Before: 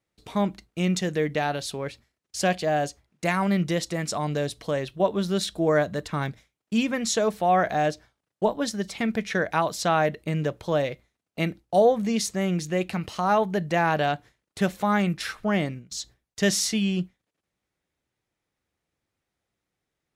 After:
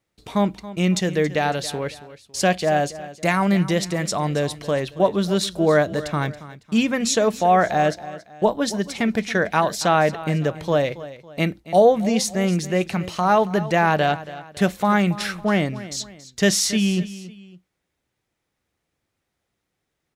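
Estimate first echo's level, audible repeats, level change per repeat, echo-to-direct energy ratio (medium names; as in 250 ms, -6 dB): -16.0 dB, 2, -8.0 dB, -15.5 dB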